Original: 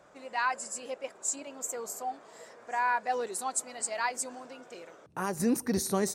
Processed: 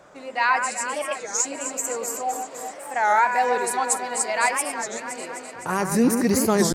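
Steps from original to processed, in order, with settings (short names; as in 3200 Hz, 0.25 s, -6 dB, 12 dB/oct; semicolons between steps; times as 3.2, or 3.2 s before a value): dynamic EQ 2200 Hz, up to +6 dB, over -51 dBFS, Q 3.6; tempo 0.91×; on a send: echo with dull and thin repeats by turns 0.128 s, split 2300 Hz, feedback 83%, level -6.5 dB; on the sum: record warp 33 1/3 rpm, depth 250 cents; gain +8 dB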